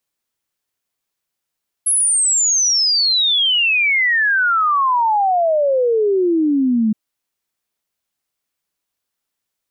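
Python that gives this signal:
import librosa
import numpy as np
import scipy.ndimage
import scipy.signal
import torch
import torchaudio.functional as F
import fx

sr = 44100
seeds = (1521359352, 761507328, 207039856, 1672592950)

y = fx.ess(sr, length_s=5.07, from_hz=11000.0, to_hz=210.0, level_db=-12.5)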